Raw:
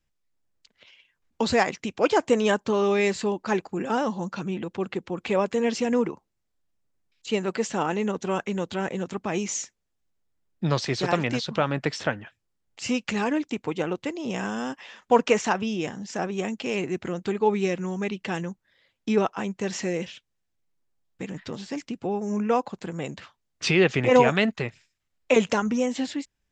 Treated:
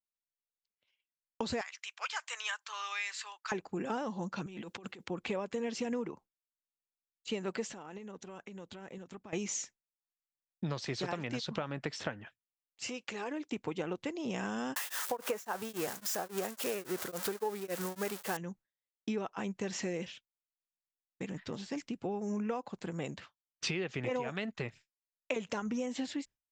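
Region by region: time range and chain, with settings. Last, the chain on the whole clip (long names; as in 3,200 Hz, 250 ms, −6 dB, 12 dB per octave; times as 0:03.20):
0:01.61–0:03.52: high-pass filter 1,200 Hz 24 dB per octave + multiband upward and downward compressor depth 40%
0:04.46–0:05.08: high-pass filter 49 Hz + spectral tilt +2 dB per octave + compressor whose output falls as the input rises −40 dBFS
0:07.73–0:09.33: downward compressor 10 to 1, threshold −35 dBFS + shaped tremolo saw up 4 Hz, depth 35% + floating-point word with a short mantissa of 8 bits
0:12.84–0:13.52: high-pass filter 82 Hz + downward compressor 4 to 1, threshold −29 dBFS + low shelf with overshoot 270 Hz −7 dB, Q 1.5
0:14.76–0:18.37: spike at every zero crossing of −16 dBFS + flat-topped bell 830 Hz +9 dB 2.4 octaves + tremolo along a rectified sine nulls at 3.6 Hz
whole clip: downward expander −40 dBFS; downward compressor 16 to 1, threshold −26 dBFS; level −5.5 dB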